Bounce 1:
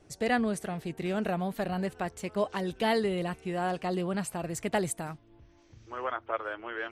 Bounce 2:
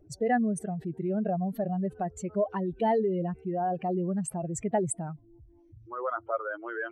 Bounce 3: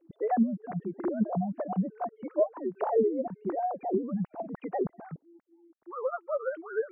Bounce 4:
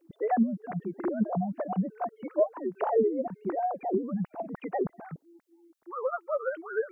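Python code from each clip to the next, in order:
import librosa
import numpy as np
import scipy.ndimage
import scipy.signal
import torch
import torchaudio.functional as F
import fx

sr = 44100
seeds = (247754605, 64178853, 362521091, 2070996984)

y1 = fx.spec_expand(x, sr, power=2.2)
y1 = y1 * 10.0 ** (2.0 / 20.0)
y2 = fx.sine_speech(y1, sr)
y2 = fx.env_lowpass_down(y2, sr, base_hz=700.0, full_db=-24.5)
y3 = fx.high_shelf(y2, sr, hz=2200.0, db=11.0)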